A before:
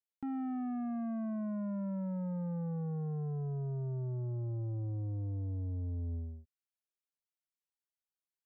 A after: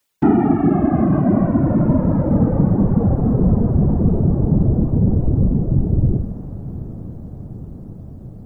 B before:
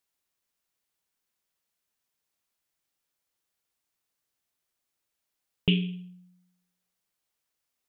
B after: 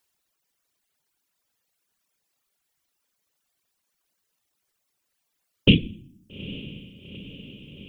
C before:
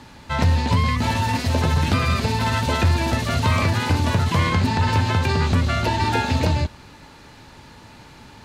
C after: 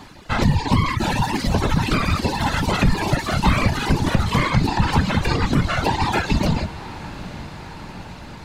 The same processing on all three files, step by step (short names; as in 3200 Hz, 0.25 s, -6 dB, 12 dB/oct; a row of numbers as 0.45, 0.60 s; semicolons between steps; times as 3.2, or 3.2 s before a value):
whisperiser; reverb removal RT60 1.2 s; diffused feedback echo 0.845 s, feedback 69%, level -16 dB; normalise peaks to -3 dBFS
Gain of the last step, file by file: +24.0, +8.5, +2.5 dB